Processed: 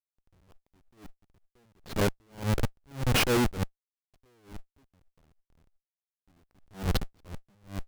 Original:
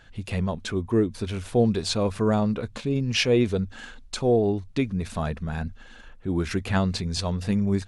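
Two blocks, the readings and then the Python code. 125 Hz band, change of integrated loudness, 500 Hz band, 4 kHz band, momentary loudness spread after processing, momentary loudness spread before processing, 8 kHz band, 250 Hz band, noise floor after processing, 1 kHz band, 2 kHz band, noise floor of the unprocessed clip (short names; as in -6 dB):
-7.5 dB, -4.0 dB, -11.0 dB, -5.5 dB, 19 LU, 10 LU, -3.5 dB, -11.0 dB, under -85 dBFS, -5.0 dB, -3.0 dB, -47 dBFS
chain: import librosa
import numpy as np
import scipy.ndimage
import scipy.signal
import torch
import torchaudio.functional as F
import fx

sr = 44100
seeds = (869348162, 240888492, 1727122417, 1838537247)

y = fx.schmitt(x, sr, flips_db=-23.5)
y = fx.quant_float(y, sr, bits=4)
y = fx.attack_slew(y, sr, db_per_s=180.0)
y = y * librosa.db_to_amplitude(2.5)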